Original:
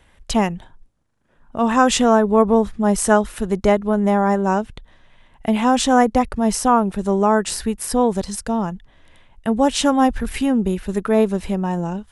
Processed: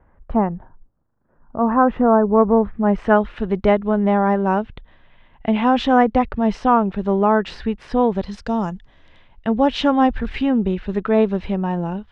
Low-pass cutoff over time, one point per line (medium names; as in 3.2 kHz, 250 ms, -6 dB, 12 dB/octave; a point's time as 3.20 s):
low-pass 24 dB/octave
2.18 s 1.4 kHz
3.41 s 3.5 kHz
8.29 s 3.5 kHz
8.62 s 7.5 kHz
9.59 s 3.8 kHz